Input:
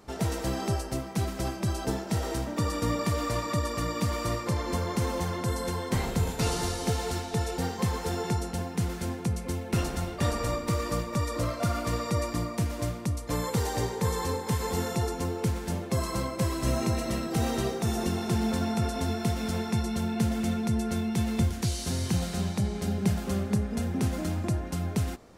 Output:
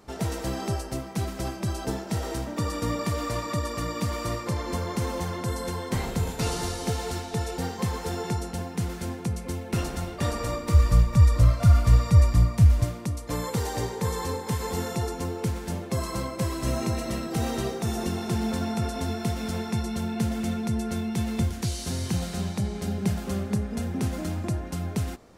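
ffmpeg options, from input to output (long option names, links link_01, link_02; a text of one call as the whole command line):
ffmpeg -i in.wav -filter_complex "[0:a]asplit=3[link_01][link_02][link_03];[link_01]afade=type=out:start_time=10.73:duration=0.02[link_04];[link_02]asubboost=boost=11:cutoff=97,afade=type=in:start_time=10.73:duration=0.02,afade=type=out:start_time=12.83:duration=0.02[link_05];[link_03]afade=type=in:start_time=12.83:duration=0.02[link_06];[link_04][link_05][link_06]amix=inputs=3:normalize=0" out.wav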